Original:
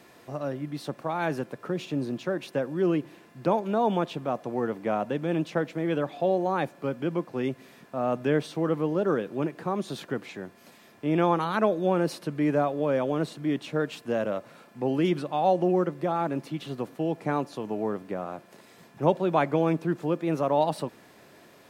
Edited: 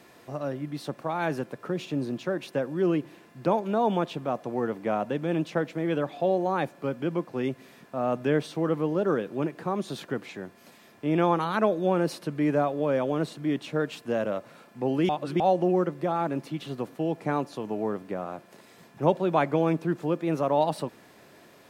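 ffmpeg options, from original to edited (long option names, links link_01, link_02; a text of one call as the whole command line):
ffmpeg -i in.wav -filter_complex "[0:a]asplit=3[link_01][link_02][link_03];[link_01]atrim=end=15.092[link_04];[link_02]atrim=start=15.088:end=15.402,asetpts=PTS-STARTPTS,areverse[link_05];[link_03]atrim=start=15.398[link_06];[link_04][link_05]acrossfade=duration=0.004:curve1=hsin:curve2=hsin[link_07];[link_07][link_06]acrossfade=duration=0.004:curve1=hsin:curve2=hsin" out.wav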